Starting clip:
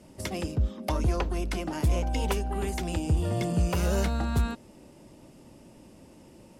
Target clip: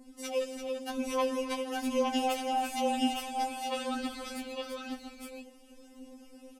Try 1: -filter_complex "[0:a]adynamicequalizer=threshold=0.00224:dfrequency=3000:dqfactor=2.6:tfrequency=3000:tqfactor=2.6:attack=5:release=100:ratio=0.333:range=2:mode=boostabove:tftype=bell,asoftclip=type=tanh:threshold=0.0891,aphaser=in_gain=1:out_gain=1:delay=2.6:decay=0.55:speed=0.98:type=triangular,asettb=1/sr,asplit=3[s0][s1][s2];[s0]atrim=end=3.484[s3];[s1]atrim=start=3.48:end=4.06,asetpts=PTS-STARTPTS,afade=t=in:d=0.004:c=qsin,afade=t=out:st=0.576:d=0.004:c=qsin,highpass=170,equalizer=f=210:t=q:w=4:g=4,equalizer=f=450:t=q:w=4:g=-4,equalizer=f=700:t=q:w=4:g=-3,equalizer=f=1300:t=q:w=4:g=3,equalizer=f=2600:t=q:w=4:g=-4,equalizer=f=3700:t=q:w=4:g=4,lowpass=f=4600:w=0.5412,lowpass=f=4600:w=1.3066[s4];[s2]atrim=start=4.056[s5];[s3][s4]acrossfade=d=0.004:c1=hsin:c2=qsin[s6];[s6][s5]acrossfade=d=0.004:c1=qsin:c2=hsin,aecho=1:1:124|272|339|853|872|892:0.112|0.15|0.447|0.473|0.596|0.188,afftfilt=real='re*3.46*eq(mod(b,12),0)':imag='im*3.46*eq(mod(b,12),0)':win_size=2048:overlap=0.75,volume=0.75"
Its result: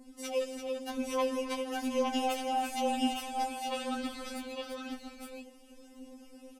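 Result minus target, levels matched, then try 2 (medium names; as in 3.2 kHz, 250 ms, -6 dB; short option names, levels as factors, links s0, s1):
saturation: distortion +12 dB
-filter_complex "[0:a]adynamicequalizer=threshold=0.00224:dfrequency=3000:dqfactor=2.6:tfrequency=3000:tqfactor=2.6:attack=5:release=100:ratio=0.333:range=2:mode=boostabove:tftype=bell,asoftclip=type=tanh:threshold=0.211,aphaser=in_gain=1:out_gain=1:delay=2.6:decay=0.55:speed=0.98:type=triangular,asettb=1/sr,asplit=3[s0][s1][s2];[s0]atrim=end=3.484[s3];[s1]atrim=start=3.48:end=4.06,asetpts=PTS-STARTPTS,afade=t=in:d=0.004:c=qsin,afade=t=out:st=0.576:d=0.004:c=qsin,highpass=170,equalizer=f=210:t=q:w=4:g=4,equalizer=f=450:t=q:w=4:g=-4,equalizer=f=700:t=q:w=4:g=-3,equalizer=f=1300:t=q:w=4:g=3,equalizer=f=2600:t=q:w=4:g=-4,equalizer=f=3700:t=q:w=4:g=4,lowpass=f=4600:w=0.5412,lowpass=f=4600:w=1.3066[s4];[s2]atrim=start=4.056[s5];[s3][s4]acrossfade=d=0.004:c1=hsin:c2=qsin[s6];[s6][s5]acrossfade=d=0.004:c1=qsin:c2=hsin,aecho=1:1:124|272|339|853|872|892:0.112|0.15|0.447|0.473|0.596|0.188,afftfilt=real='re*3.46*eq(mod(b,12),0)':imag='im*3.46*eq(mod(b,12),0)':win_size=2048:overlap=0.75,volume=0.75"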